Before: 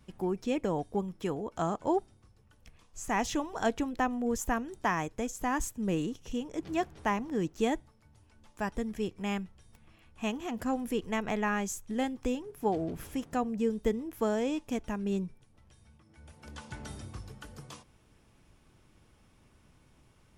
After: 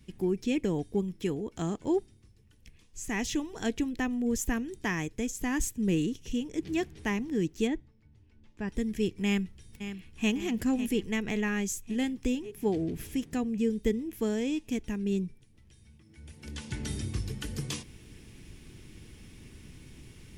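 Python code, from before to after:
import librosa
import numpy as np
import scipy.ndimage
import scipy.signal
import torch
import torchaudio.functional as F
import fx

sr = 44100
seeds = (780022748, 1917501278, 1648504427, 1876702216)

y = fx.spacing_loss(x, sr, db_at_10k=21, at=(7.66, 8.68), fade=0.02)
y = fx.echo_throw(y, sr, start_s=9.25, length_s=1.06, ms=550, feedback_pct=65, wet_db=-11.0)
y = fx.band_shelf(y, sr, hz=880.0, db=-12.0, octaves=1.7)
y = fx.rider(y, sr, range_db=10, speed_s=2.0)
y = y * 10.0 ** (3.5 / 20.0)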